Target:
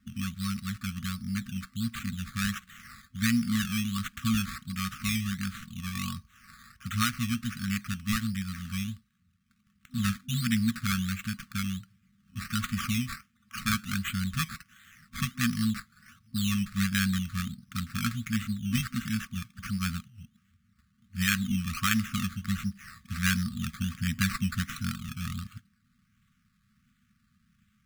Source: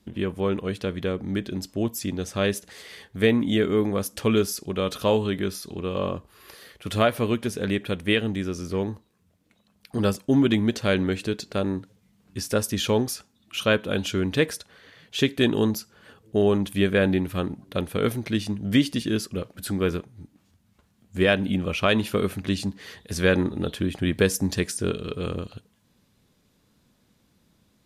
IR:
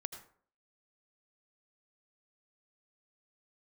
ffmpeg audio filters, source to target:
-af "acrusher=samples=12:mix=1:aa=0.000001:lfo=1:lforange=7.2:lforate=1.4,afftfilt=real='re*(1-between(b*sr/4096,250,1100))':imag='im*(1-between(b*sr/4096,250,1100))':win_size=4096:overlap=0.75,volume=-3dB"

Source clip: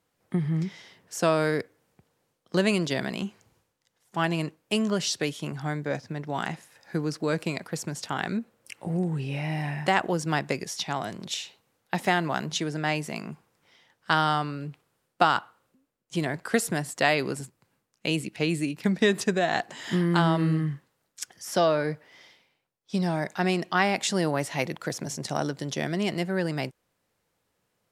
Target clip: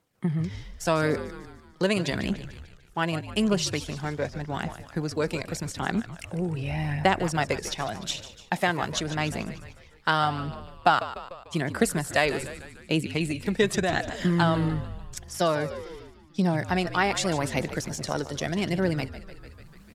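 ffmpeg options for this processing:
-filter_complex "[0:a]atempo=1.4,asplit=7[a][b][c][d][e][f][g];[b]adelay=148,afreqshift=-59,volume=-13dB[h];[c]adelay=296,afreqshift=-118,volume=-18.2dB[i];[d]adelay=444,afreqshift=-177,volume=-23.4dB[j];[e]adelay=592,afreqshift=-236,volume=-28.6dB[k];[f]adelay=740,afreqshift=-295,volume=-33.8dB[l];[g]adelay=888,afreqshift=-354,volume=-39dB[m];[a][h][i][j][k][l][m]amix=inputs=7:normalize=0,aphaser=in_gain=1:out_gain=1:delay=2.4:decay=0.33:speed=0.85:type=triangular,areverse,acompressor=mode=upward:threshold=-37dB:ratio=2.5,areverse"

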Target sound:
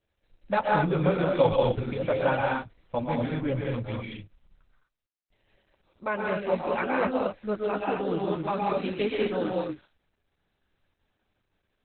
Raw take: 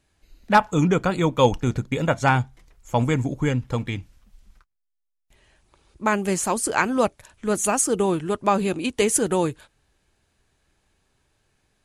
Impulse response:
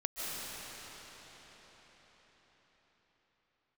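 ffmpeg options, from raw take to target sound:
-filter_complex "[0:a]asetnsamples=n=441:p=0,asendcmd='7.54 equalizer g 4.5',equalizer=f=550:w=7.5:g=12,flanger=delay=9.3:depth=3.1:regen=-7:speed=0.54:shape=sinusoidal[a];[1:a]atrim=start_sample=2205,afade=t=out:st=0.36:d=0.01,atrim=end_sample=16317,asetrate=52920,aresample=44100[b];[a][b]afir=irnorm=-1:irlink=0,volume=-2dB" -ar 48000 -c:a libopus -b:a 8k

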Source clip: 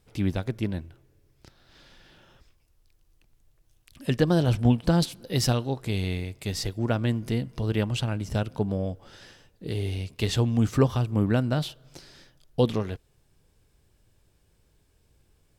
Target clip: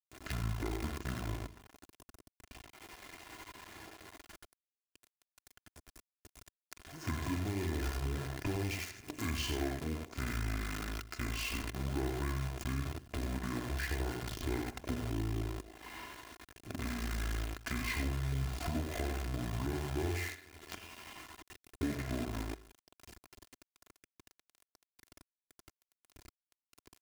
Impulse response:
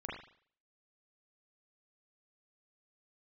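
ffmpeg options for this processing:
-filter_complex "[0:a]alimiter=limit=-16.5dB:level=0:latency=1:release=37,asetrate=25442,aresample=44100,equalizer=f=3.6k:t=o:w=0.49:g=-8.5,aecho=1:1:90|180|270:0.473|0.071|0.0106,asplit=2[a][b];[1:a]atrim=start_sample=2205[c];[b][c]afir=irnorm=-1:irlink=0,volume=-6dB[d];[a][d]amix=inputs=2:normalize=0,acrusher=bits=6:dc=4:mix=0:aa=0.000001,highpass=f=110:p=1,acompressor=threshold=-49dB:ratio=2,aecho=1:1:2.9:0.51,volume=3.5dB"

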